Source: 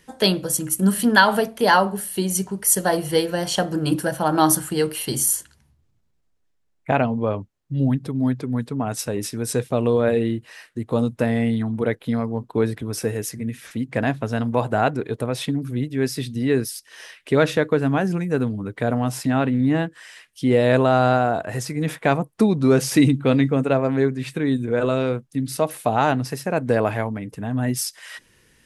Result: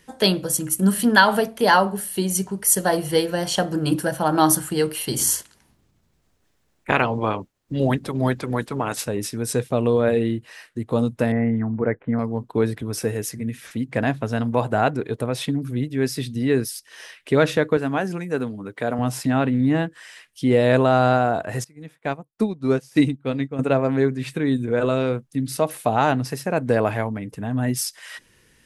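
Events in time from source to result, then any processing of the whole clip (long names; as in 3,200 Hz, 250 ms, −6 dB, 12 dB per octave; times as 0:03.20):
0:05.16–0:09.04: ceiling on every frequency bin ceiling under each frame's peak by 17 dB
0:11.32–0:12.19: Butterworth low-pass 2,100 Hz
0:17.77–0:18.99: high-pass filter 310 Hz 6 dB per octave
0:21.64–0:23.59: expander for the loud parts 2.5 to 1, over −27 dBFS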